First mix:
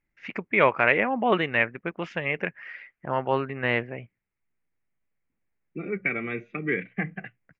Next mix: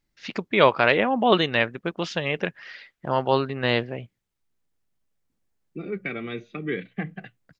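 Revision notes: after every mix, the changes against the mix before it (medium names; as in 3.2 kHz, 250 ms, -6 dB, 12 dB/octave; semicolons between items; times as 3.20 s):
first voice +4.0 dB; master: add resonant high shelf 3 kHz +10 dB, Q 3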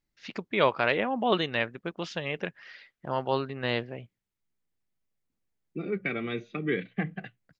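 first voice -6.5 dB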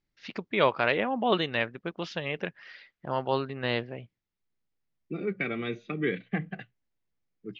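first voice: add low-pass 6 kHz 24 dB/octave; second voice: entry -0.65 s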